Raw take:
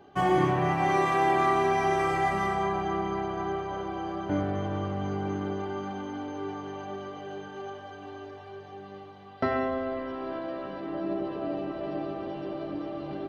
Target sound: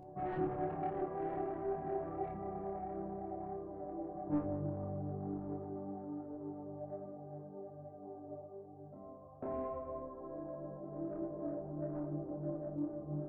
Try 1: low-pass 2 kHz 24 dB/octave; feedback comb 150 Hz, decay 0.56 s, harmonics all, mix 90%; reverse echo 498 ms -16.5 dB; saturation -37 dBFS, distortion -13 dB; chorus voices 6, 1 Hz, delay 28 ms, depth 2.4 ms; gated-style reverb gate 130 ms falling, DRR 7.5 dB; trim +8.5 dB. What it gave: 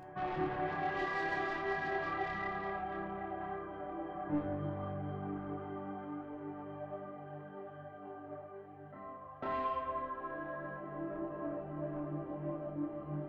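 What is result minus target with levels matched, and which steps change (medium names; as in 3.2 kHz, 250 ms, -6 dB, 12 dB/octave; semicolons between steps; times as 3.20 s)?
2 kHz band +17.5 dB
change: low-pass 730 Hz 24 dB/octave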